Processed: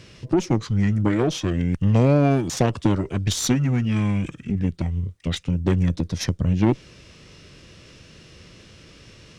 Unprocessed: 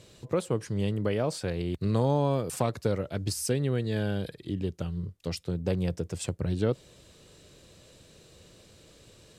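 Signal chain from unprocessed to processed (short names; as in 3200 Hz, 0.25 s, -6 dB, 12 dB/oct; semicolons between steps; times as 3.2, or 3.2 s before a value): formant shift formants -6 st; added harmonics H 8 -23 dB, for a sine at -12.5 dBFS; gain +8 dB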